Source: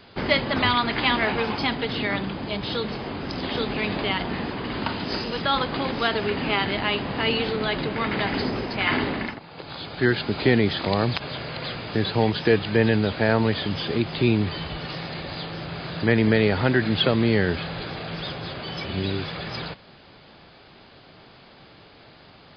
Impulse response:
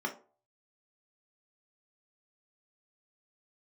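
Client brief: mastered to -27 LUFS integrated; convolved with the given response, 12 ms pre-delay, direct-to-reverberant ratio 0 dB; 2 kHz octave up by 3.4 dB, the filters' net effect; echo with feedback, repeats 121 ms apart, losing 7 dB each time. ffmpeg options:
-filter_complex "[0:a]equalizer=f=2000:t=o:g=4,aecho=1:1:121|242|363|484|605:0.447|0.201|0.0905|0.0407|0.0183,asplit=2[s0][s1];[1:a]atrim=start_sample=2205,adelay=12[s2];[s1][s2]afir=irnorm=-1:irlink=0,volume=0.562[s3];[s0][s3]amix=inputs=2:normalize=0,volume=0.422"

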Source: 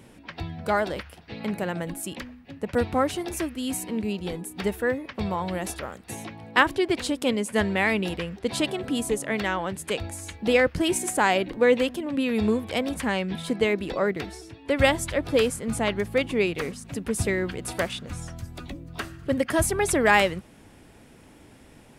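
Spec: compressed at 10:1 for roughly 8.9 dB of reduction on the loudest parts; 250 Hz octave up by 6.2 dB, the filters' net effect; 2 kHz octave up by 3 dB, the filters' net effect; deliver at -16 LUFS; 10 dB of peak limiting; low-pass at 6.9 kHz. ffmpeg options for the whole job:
-af "lowpass=6900,equalizer=f=250:t=o:g=7.5,equalizer=f=2000:t=o:g=3.5,acompressor=threshold=0.1:ratio=10,volume=4.22,alimiter=limit=0.596:level=0:latency=1"

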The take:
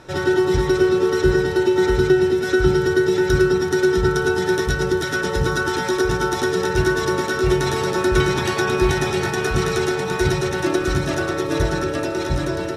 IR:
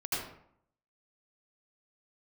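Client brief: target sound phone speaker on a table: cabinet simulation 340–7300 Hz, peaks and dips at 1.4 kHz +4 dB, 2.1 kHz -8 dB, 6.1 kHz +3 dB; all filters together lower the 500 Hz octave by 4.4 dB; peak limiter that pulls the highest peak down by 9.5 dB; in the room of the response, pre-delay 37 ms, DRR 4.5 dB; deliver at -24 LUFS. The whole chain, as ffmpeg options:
-filter_complex "[0:a]equalizer=f=500:t=o:g=-4.5,alimiter=limit=0.2:level=0:latency=1,asplit=2[s0][s1];[1:a]atrim=start_sample=2205,adelay=37[s2];[s1][s2]afir=irnorm=-1:irlink=0,volume=0.299[s3];[s0][s3]amix=inputs=2:normalize=0,highpass=f=340:w=0.5412,highpass=f=340:w=1.3066,equalizer=f=1400:t=q:w=4:g=4,equalizer=f=2100:t=q:w=4:g=-8,equalizer=f=6100:t=q:w=4:g=3,lowpass=f=7300:w=0.5412,lowpass=f=7300:w=1.3066,volume=0.794"

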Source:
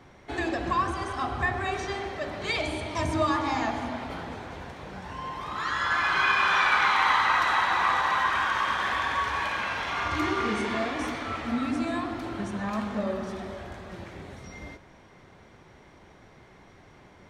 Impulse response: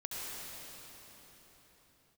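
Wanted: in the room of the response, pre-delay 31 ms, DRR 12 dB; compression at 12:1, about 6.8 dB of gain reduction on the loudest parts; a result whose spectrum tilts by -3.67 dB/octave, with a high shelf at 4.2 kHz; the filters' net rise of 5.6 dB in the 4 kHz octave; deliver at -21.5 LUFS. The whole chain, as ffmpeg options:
-filter_complex "[0:a]equalizer=f=4000:t=o:g=5,highshelf=f=4200:g=4,acompressor=threshold=0.0631:ratio=12,asplit=2[s0][s1];[1:a]atrim=start_sample=2205,adelay=31[s2];[s1][s2]afir=irnorm=-1:irlink=0,volume=0.188[s3];[s0][s3]amix=inputs=2:normalize=0,volume=2.37"

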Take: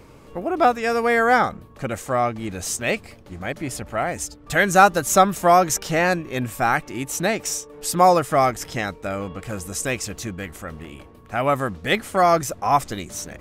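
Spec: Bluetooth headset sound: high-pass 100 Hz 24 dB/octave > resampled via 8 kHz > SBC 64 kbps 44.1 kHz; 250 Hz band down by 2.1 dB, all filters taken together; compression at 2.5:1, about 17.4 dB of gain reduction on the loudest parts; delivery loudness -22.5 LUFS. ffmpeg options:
-af "equalizer=f=250:t=o:g=-3,acompressor=threshold=0.0141:ratio=2.5,highpass=f=100:w=0.5412,highpass=f=100:w=1.3066,aresample=8000,aresample=44100,volume=4.73" -ar 44100 -c:a sbc -b:a 64k

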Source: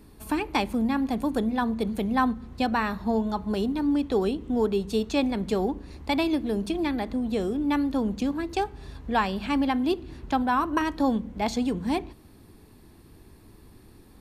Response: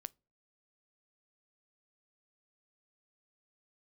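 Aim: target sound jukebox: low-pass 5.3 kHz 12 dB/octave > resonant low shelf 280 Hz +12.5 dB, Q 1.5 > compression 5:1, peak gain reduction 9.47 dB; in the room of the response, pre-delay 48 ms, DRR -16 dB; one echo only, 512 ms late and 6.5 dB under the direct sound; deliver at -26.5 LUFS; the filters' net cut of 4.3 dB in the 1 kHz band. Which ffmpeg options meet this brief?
-filter_complex "[0:a]equalizer=f=1000:t=o:g=-4,aecho=1:1:512:0.473,asplit=2[s0][s1];[1:a]atrim=start_sample=2205,adelay=48[s2];[s1][s2]afir=irnorm=-1:irlink=0,volume=10.6[s3];[s0][s3]amix=inputs=2:normalize=0,lowpass=5300,lowshelf=f=280:t=q:w=1.5:g=12.5,acompressor=threshold=0.708:ratio=5,volume=0.106"

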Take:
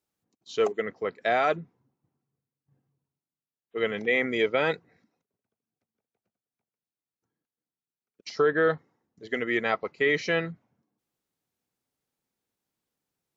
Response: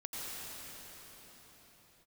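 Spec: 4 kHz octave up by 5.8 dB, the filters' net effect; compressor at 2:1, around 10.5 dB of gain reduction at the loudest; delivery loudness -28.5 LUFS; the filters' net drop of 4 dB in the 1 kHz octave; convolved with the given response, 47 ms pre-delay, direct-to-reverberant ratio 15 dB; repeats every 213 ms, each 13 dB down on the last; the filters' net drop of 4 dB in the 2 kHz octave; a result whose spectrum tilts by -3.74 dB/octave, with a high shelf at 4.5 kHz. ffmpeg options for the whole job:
-filter_complex "[0:a]equalizer=f=1000:t=o:g=-5.5,equalizer=f=2000:t=o:g=-6,equalizer=f=4000:t=o:g=7.5,highshelf=f=4500:g=6.5,acompressor=threshold=0.01:ratio=2,aecho=1:1:213|426|639:0.224|0.0493|0.0108,asplit=2[s0][s1];[1:a]atrim=start_sample=2205,adelay=47[s2];[s1][s2]afir=irnorm=-1:irlink=0,volume=0.141[s3];[s0][s3]amix=inputs=2:normalize=0,volume=2.99"

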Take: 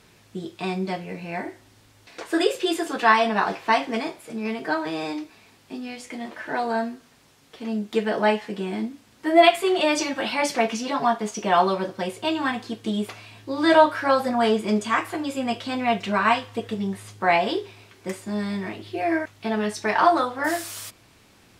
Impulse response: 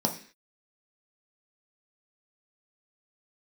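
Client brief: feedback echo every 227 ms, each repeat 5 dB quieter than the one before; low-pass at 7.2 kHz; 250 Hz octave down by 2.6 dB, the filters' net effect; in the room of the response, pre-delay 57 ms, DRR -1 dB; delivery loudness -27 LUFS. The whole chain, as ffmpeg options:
-filter_complex "[0:a]lowpass=7200,equalizer=f=250:t=o:g=-3.5,aecho=1:1:227|454|681|908|1135|1362|1589:0.562|0.315|0.176|0.0988|0.0553|0.031|0.0173,asplit=2[s0][s1];[1:a]atrim=start_sample=2205,adelay=57[s2];[s1][s2]afir=irnorm=-1:irlink=0,volume=0.398[s3];[s0][s3]amix=inputs=2:normalize=0,volume=0.316"

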